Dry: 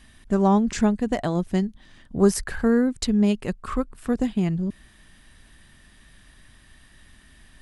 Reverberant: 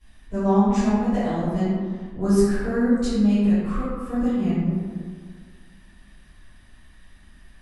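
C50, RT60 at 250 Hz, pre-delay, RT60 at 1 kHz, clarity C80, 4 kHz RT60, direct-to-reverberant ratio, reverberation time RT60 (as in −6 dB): −3.5 dB, 2.0 s, 10 ms, 1.8 s, −0.5 dB, 0.85 s, −16.0 dB, 1.8 s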